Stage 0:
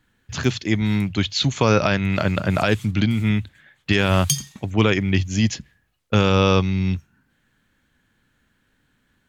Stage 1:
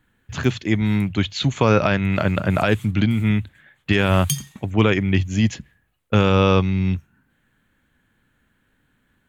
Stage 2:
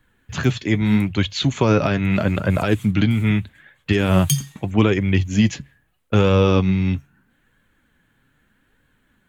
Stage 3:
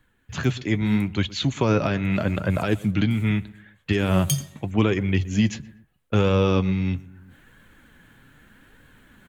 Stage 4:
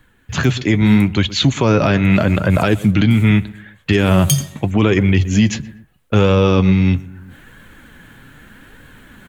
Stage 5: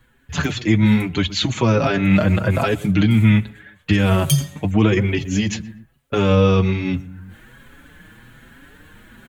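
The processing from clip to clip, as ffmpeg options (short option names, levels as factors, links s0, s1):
-af "equalizer=f=5200:t=o:w=0.88:g=-9.5,volume=1.12"
-filter_complex "[0:a]acrossover=split=500|4900[s0][s1][s2];[s1]alimiter=limit=0.15:level=0:latency=1:release=133[s3];[s0][s3][s2]amix=inputs=3:normalize=0,flanger=delay=1.8:depth=5.6:regen=56:speed=0.79:shape=sinusoidal,volume=2.11"
-filter_complex "[0:a]asplit=2[s0][s1];[s1]adelay=120,lowpass=f=1700:p=1,volume=0.106,asplit=2[s2][s3];[s3]adelay=120,lowpass=f=1700:p=1,volume=0.45,asplit=2[s4][s5];[s5]adelay=120,lowpass=f=1700:p=1,volume=0.45[s6];[s0][s2][s4][s6]amix=inputs=4:normalize=0,areverse,acompressor=mode=upward:threshold=0.0178:ratio=2.5,areverse,volume=0.631"
-af "alimiter=level_in=4.73:limit=0.891:release=50:level=0:latency=1,volume=0.708"
-filter_complex "[0:a]asplit=2[s0][s1];[s1]adelay=5.7,afreqshift=1.2[s2];[s0][s2]amix=inputs=2:normalize=1"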